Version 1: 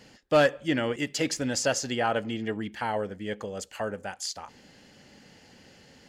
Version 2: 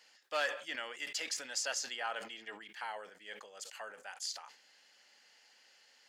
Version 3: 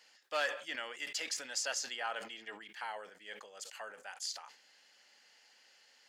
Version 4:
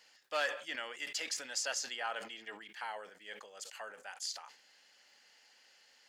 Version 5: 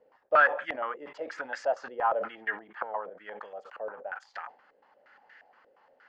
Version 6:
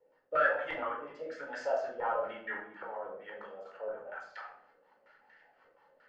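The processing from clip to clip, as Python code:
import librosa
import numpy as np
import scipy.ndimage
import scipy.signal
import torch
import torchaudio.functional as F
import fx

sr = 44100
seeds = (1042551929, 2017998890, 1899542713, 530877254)

y1 = scipy.signal.sosfilt(scipy.signal.butter(2, 1000.0, 'highpass', fs=sr, output='sos'), x)
y1 = fx.peak_eq(y1, sr, hz=4700.0, db=2.0, octaves=0.77)
y1 = fx.sustainer(y1, sr, db_per_s=110.0)
y1 = F.gain(torch.from_numpy(y1), -7.5).numpy()
y2 = y1
y3 = fx.dmg_crackle(y2, sr, seeds[0], per_s=55.0, level_db=-62.0)
y4 = fx.filter_held_lowpass(y3, sr, hz=8.5, low_hz=500.0, high_hz=1700.0)
y4 = F.gain(torch.from_numpy(y4), 6.5).numpy()
y5 = fx.rotary_switch(y4, sr, hz=1.0, then_hz=5.5, switch_at_s=1.55)
y5 = fx.room_shoebox(y5, sr, seeds[1], volume_m3=860.0, walls='furnished', distance_m=4.4)
y5 = F.gain(torch.from_numpy(y5), -7.0).numpy()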